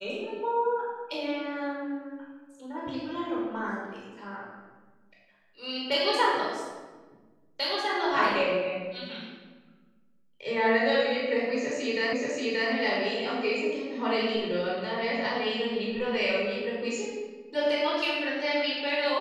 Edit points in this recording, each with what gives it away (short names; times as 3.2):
12.13 repeat of the last 0.58 s